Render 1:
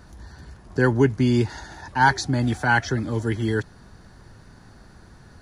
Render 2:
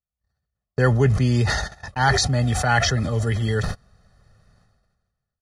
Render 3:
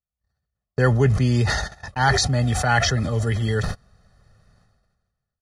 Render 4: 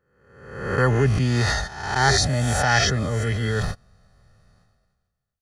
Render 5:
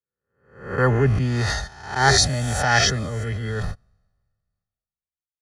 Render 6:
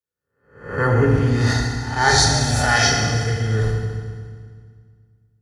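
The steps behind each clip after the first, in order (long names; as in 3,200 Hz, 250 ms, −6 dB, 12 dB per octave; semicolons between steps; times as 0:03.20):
noise gate −34 dBFS, range −52 dB; comb filter 1.6 ms, depth 78%; level that may fall only so fast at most 37 dB per second
no processing that can be heard
peak hold with a rise ahead of every peak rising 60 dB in 0.87 s; level −2.5 dB
multiband upward and downward expander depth 70%; level −1 dB
feedback delay network reverb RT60 1.9 s, low-frequency decay 1.3×, high-frequency decay 0.9×, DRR −1 dB; level −1 dB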